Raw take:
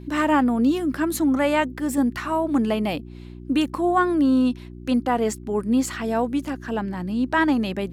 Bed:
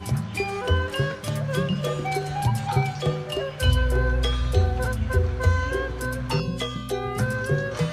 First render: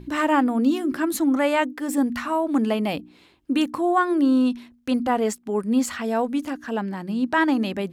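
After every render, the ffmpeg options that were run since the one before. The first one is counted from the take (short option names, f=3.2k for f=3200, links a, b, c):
-af "bandreject=f=60:t=h:w=4,bandreject=f=120:t=h:w=4,bandreject=f=180:t=h:w=4,bandreject=f=240:t=h:w=4,bandreject=f=300:t=h:w=4,bandreject=f=360:t=h:w=4"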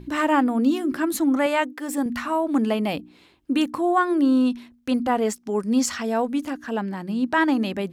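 -filter_complex "[0:a]asettb=1/sr,asplit=3[a][b][c];[a]atrim=end=1.464[d];[b]atrim=start=1.46:end=2.06,asetpts=PTS-STARTPTS,afade=t=in:d=0.004:c=qsin,afade=t=out:st=0.596:d=0.004:c=qsin,highpass=f=320:p=1[e];[c]atrim=start=2.056[f];[d][e]acrossfade=d=0.004:c1=hsin:c2=qsin[g];[g][f]acrossfade=d=0.004:c1=qsin:c2=hsin,asettb=1/sr,asplit=3[h][i][j];[h]atrim=end=5.364[k];[i]atrim=start=5.36:end=6.03,asetpts=PTS-STARTPTS,afade=t=in:d=0.004:c=qsin,afade=t=out:st=0.666:d=0.004:c=qsin,equalizer=f=5.6k:t=o:w=0.61:g=11[l];[j]atrim=start=6.026[m];[k][l]acrossfade=d=0.004:c1=hsin:c2=qsin[n];[n][m]acrossfade=d=0.004:c1=qsin:c2=hsin"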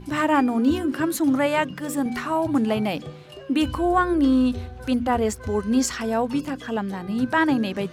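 -filter_complex "[1:a]volume=-13.5dB[a];[0:a][a]amix=inputs=2:normalize=0"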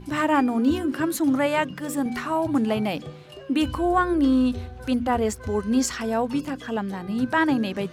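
-af "volume=-1dB"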